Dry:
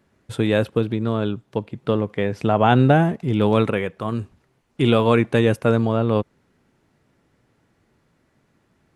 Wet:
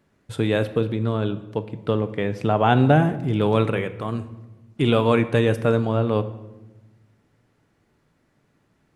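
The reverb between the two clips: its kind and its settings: simulated room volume 550 m³, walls mixed, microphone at 0.38 m; trim -2 dB

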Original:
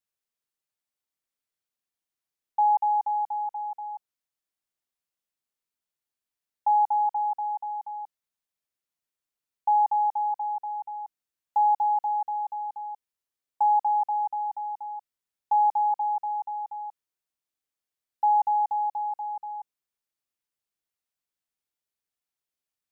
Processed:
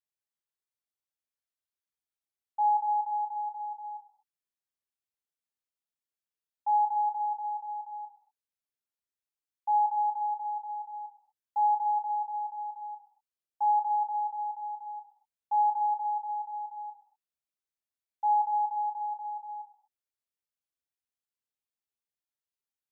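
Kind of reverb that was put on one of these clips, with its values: gated-style reverb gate 270 ms falling, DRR 0 dB; trim -11 dB

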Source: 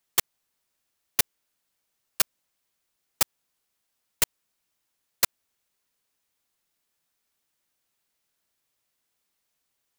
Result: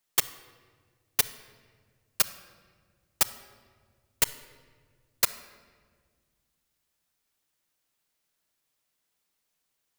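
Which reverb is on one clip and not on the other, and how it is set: simulated room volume 2100 m³, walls mixed, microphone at 0.49 m; trim -1 dB

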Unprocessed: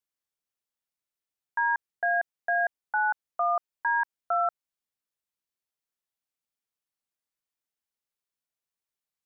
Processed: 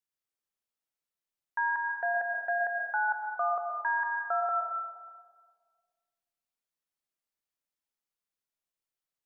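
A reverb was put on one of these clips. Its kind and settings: algorithmic reverb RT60 1.7 s, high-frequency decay 0.35×, pre-delay 75 ms, DRR 2.5 dB; trim -3.5 dB

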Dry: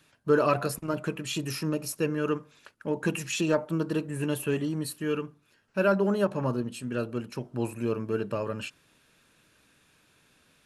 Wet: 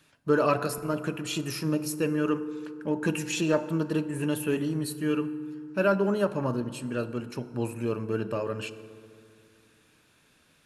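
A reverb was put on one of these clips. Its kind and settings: FDN reverb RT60 2.4 s, low-frequency decay 1.2×, high-frequency decay 0.45×, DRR 12.5 dB

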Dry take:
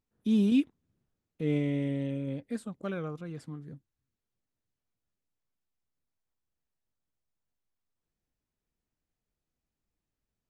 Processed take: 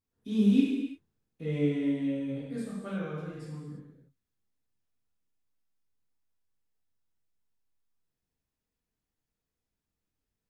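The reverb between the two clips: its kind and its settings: gated-style reverb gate 380 ms falling, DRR -8 dB; trim -8.5 dB

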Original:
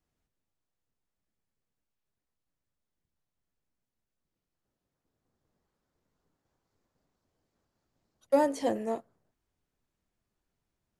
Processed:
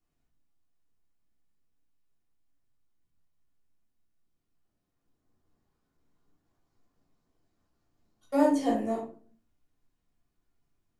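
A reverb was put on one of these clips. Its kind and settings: simulated room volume 290 m³, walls furnished, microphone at 3.3 m; trim -5 dB

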